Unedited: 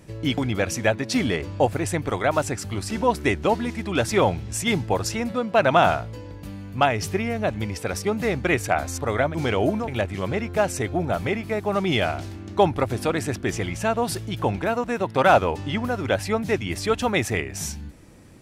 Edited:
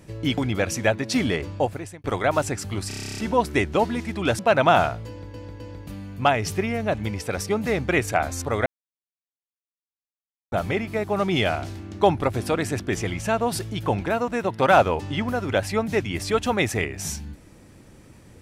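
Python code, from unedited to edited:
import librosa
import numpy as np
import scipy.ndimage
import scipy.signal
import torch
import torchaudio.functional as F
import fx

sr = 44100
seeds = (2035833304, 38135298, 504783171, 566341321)

y = fx.edit(x, sr, fx.fade_out_span(start_s=1.45, length_s=0.59),
    fx.stutter(start_s=2.88, slice_s=0.03, count=11),
    fx.cut(start_s=4.09, length_s=1.38),
    fx.repeat(start_s=6.16, length_s=0.26, count=3),
    fx.silence(start_s=9.22, length_s=1.86), tone=tone)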